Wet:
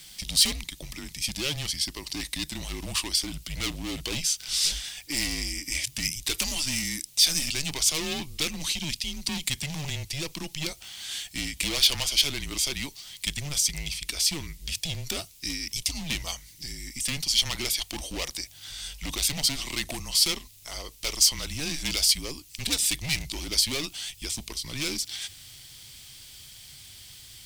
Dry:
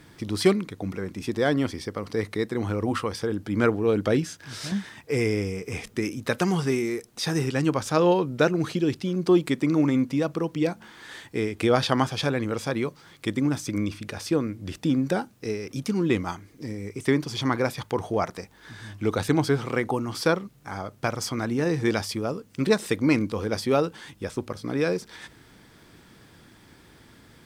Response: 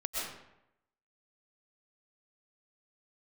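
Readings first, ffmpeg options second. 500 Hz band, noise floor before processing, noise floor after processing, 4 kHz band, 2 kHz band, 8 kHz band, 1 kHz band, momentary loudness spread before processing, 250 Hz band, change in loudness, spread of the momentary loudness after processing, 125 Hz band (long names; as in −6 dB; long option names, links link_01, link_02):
−17.5 dB, −54 dBFS, −51 dBFS, +11.0 dB, −2.0 dB, +14.0 dB, −12.5 dB, 11 LU, −13.5 dB, −0.5 dB, 16 LU, −9.0 dB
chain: -af "asubboost=boost=5.5:cutoff=74,asoftclip=type=hard:threshold=-24dB,aexciter=amount=5.4:drive=9:freq=2400,afreqshift=-150,volume=-7.5dB"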